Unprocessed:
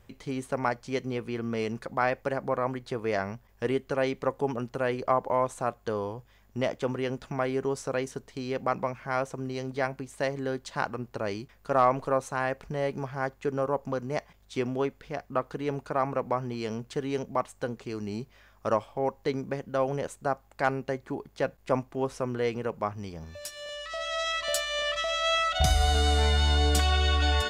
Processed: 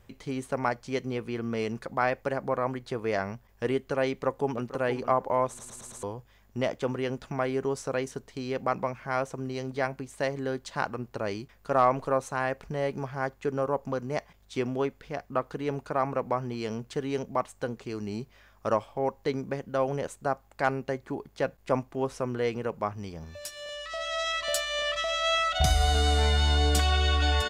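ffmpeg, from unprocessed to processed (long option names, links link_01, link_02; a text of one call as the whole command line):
ffmpeg -i in.wav -filter_complex "[0:a]asplit=2[link_01][link_02];[link_02]afade=type=in:start_time=4.1:duration=0.01,afade=type=out:start_time=4.73:duration=0.01,aecho=0:1:470|940|1410:0.266073|0.0532145|0.0106429[link_03];[link_01][link_03]amix=inputs=2:normalize=0,asplit=6[link_04][link_05][link_06][link_07][link_08][link_09];[link_04]atrim=end=5.592[link_10];[link_05]atrim=start=5.478:end=5.592[link_11];[link_06]atrim=start=5.478:end=5.592[link_12];[link_07]atrim=start=5.478:end=5.592[link_13];[link_08]atrim=start=5.478:end=5.592[link_14];[link_09]atrim=start=6.028[link_15];[link_10][link_11]acrossfade=duration=0.004:curve1=hsin:curve2=hsin[link_16];[link_16][link_12]acrossfade=duration=0.004:curve1=hsin:curve2=hsin[link_17];[link_17][link_13]acrossfade=duration=0.004:curve1=hsin:curve2=hsin[link_18];[link_18][link_14]acrossfade=duration=0.004:curve1=hsin:curve2=hsin[link_19];[link_19][link_15]acrossfade=duration=0.004:curve1=hsin:curve2=hsin" out.wav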